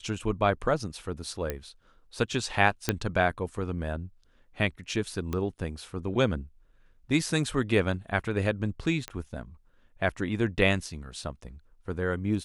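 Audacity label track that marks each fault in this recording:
1.500000	1.500000	pop -16 dBFS
2.890000	2.890000	pop -8 dBFS
5.330000	5.330000	pop -18 dBFS
9.080000	9.080000	pop -18 dBFS

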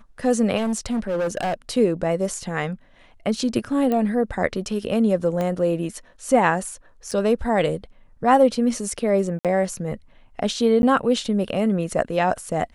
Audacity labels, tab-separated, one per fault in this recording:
0.570000	1.540000	clipped -20 dBFS
3.920000	3.920000	pop -13 dBFS
5.410000	5.410000	pop -14 dBFS
7.110000	7.120000	dropout 5.4 ms
9.390000	9.450000	dropout 57 ms
10.820000	10.830000	dropout 11 ms

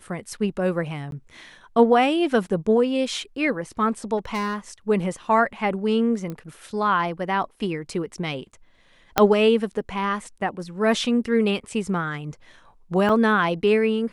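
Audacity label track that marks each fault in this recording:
1.110000	1.120000	dropout 12 ms
4.170000	4.560000	clipped -22.5 dBFS
6.300000	6.300000	pop -20 dBFS
9.180000	9.180000	pop -2 dBFS
13.090000	13.090000	dropout 4.2 ms

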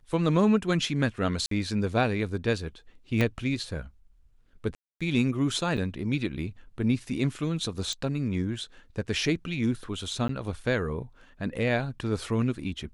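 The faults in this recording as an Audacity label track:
1.460000	1.510000	dropout 53 ms
3.210000	3.210000	pop -13 dBFS
4.750000	5.010000	dropout 256 ms
5.770000	5.780000	dropout 6.2 ms
7.930000	7.930000	pop -22 dBFS
10.280000	10.290000	dropout

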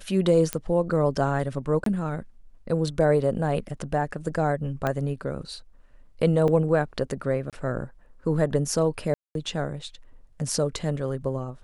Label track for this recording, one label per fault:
0.530000	0.530000	pop -10 dBFS
1.840000	1.860000	dropout 23 ms
4.870000	4.870000	pop -13 dBFS
6.480000	6.480000	dropout 3 ms
7.500000	7.530000	dropout 27 ms
9.140000	9.350000	dropout 212 ms

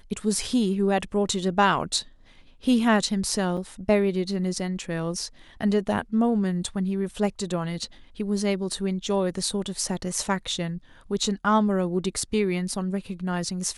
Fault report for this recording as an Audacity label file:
3.570000	3.570000	dropout 4.1 ms

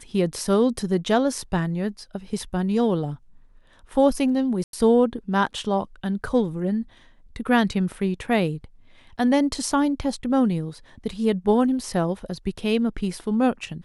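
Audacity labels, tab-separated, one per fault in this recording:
4.640000	4.730000	dropout 92 ms

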